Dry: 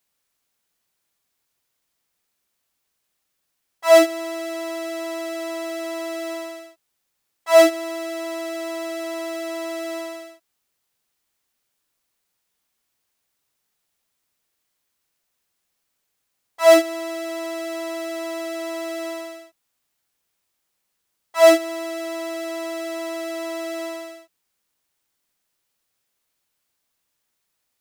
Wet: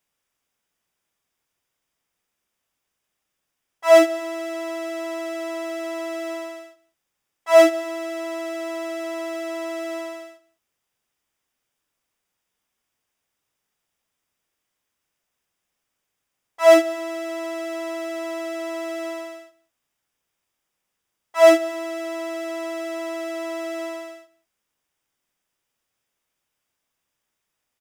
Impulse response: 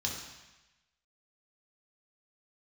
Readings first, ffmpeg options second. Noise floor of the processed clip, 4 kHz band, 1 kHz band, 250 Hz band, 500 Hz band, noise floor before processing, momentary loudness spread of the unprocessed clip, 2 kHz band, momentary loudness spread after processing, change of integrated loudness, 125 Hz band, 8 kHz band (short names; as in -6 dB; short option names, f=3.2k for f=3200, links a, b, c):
-80 dBFS, -3.5 dB, 0.0 dB, 0.0 dB, 0.0 dB, -76 dBFS, 17 LU, -0.5 dB, 17 LU, 0.0 dB, n/a, -3.5 dB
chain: -filter_complex "[0:a]highshelf=f=7.5k:g=-7.5,bandreject=f=4.2k:w=5.5,asplit=2[a][b];[b]aecho=0:1:187:0.0708[c];[a][c]amix=inputs=2:normalize=0"